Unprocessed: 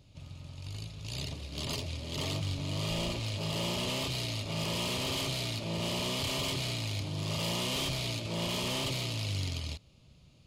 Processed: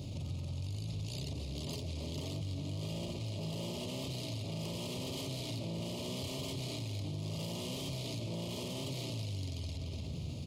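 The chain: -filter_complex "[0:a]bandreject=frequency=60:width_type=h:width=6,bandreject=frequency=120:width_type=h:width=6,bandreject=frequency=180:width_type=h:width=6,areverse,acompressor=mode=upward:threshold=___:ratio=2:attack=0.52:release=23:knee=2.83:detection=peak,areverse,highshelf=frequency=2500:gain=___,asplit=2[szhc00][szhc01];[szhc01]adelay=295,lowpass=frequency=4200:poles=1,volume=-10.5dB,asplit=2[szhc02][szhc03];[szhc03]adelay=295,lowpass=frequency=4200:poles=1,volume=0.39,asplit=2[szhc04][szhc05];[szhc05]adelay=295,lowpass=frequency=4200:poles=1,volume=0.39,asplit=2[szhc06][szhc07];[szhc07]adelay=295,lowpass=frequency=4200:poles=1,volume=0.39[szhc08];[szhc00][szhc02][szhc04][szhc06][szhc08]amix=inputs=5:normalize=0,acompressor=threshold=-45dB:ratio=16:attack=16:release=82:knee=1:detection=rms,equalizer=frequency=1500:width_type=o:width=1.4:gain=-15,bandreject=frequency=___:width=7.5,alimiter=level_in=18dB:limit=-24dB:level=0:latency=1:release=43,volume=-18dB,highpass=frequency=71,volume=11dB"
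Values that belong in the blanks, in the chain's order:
-38dB, -5.5, 1600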